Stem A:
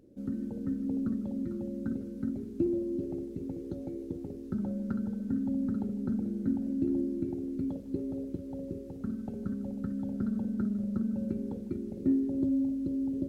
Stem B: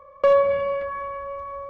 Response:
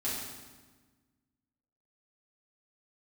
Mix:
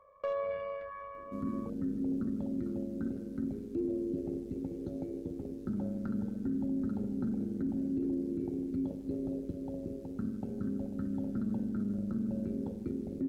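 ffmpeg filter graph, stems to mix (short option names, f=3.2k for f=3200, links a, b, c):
-filter_complex "[0:a]adelay=1150,volume=1dB,asplit=2[a][b];[b]volume=-16dB[c];[1:a]volume=-11.5dB[d];[2:a]atrim=start_sample=2205[e];[c][e]afir=irnorm=-1:irlink=0[f];[a][d][f]amix=inputs=3:normalize=0,tremolo=f=100:d=0.519,alimiter=level_in=2.5dB:limit=-24dB:level=0:latency=1:release=13,volume=-2.5dB"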